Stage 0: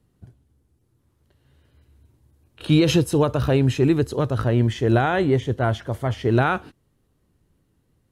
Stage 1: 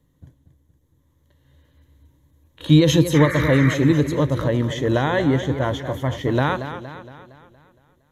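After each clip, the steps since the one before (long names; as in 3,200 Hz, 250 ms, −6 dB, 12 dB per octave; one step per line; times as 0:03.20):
sound drawn into the spectrogram noise, 0:03.14–0:03.75, 1,100–2,400 Hz −29 dBFS
EQ curve with evenly spaced ripples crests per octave 1.1, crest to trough 10 dB
feedback echo with a swinging delay time 232 ms, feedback 51%, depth 89 cents, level −10.5 dB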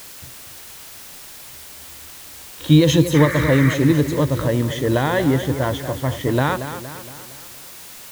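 background noise white −40 dBFS
level +1 dB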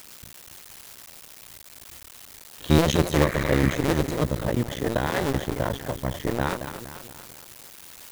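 sub-harmonics by changed cycles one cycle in 2, muted
level −3.5 dB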